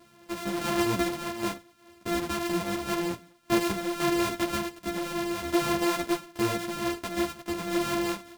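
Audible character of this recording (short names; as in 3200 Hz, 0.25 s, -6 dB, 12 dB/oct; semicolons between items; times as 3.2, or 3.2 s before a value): a buzz of ramps at a fixed pitch in blocks of 128 samples; random-step tremolo 3.5 Hz; a shimmering, thickened sound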